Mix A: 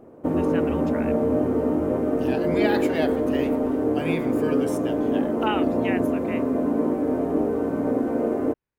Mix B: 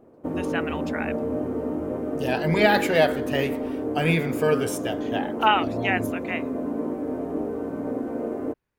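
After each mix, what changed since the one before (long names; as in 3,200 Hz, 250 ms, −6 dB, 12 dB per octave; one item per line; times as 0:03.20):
speech +7.5 dB
background −5.5 dB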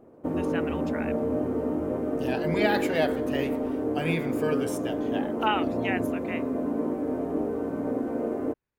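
speech −6.5 dB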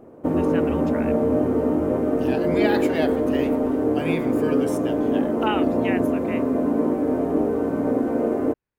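background +7.0 dB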